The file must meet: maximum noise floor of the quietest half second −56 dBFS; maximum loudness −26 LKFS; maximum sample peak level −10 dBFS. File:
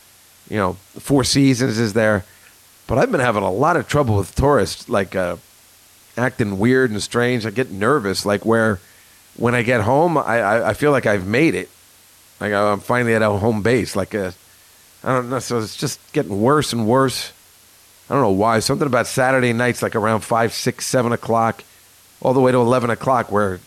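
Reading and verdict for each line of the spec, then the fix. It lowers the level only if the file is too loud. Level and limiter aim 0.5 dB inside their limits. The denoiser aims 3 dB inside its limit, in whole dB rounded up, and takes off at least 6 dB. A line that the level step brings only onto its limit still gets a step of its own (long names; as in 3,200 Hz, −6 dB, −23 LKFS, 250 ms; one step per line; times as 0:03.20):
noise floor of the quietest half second −49 dBFS: out of spec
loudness −18.5 LKFS: out of spec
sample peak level −5.0 dBFS: out of spec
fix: level −8 dB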